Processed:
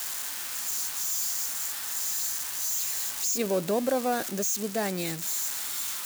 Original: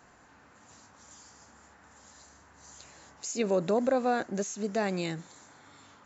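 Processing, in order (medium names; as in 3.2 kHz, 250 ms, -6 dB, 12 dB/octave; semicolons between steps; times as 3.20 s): zero-crossing glitches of -23 dBFS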